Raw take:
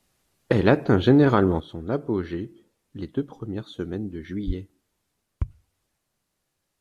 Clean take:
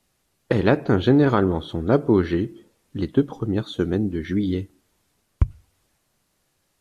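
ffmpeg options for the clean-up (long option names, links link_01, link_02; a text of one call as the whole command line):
ffmpeg -i in.wav -filter_complex "[0:a]asplit=3[link_01][link_02][link_03];[link_01]afade=type=out:start_time=4.46:duration=0.02[link_04];[link_02]highpass=frequency=140:width=0.5412,highpass=frequency=140:width=1.3066,afade=type=in:start_time=4.46:duration=0.02,afade=type=out:start_time=4.58:duration=0.02[link_05];[link_03]afade=type=in:start_time=4.58:duration=0.02[link_06];[link_04][link_05][link_06]amix=inputs=3:normalize=0,asetnsamples=nb_out_samples=441:pad=0,asendcmd='1.6 volume volume 8dB',volume=0dB" out.wav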